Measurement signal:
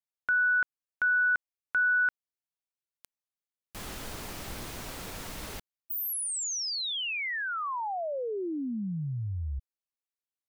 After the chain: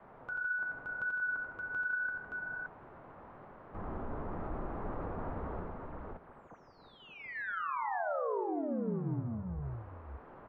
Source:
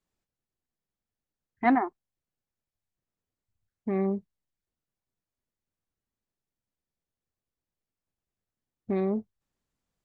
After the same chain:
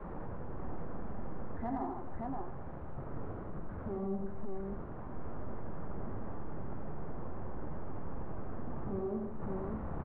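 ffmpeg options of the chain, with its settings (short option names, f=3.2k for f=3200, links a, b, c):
-af "aeval=exprs='val(0)+0.5*0.0158*sgn(val(0))':c=same,lowpass=f=1.2k:w=0.5412,lowpass=f=1.2k:w=1.3066,adynamicequalizer=threshold=0.00562:dfrequency=140:dqfactor=1.1:tfrequency=140:tqfactor=1.1:attack=5:release=100:ratio=0.375:range=3.5:mode=cutabove:tftype=bell,acompressor=threshold=-41dB:ratio=4:attack=0.42:release=96:knee=1:detection=rms,flanger=delay=4.9:depth=8.8:regen=-49:speed=0.86:shape=sinusoidal,aecho=1:1:87|158|303|572:0.596|0.447|0.158|0.708,volume=7dB"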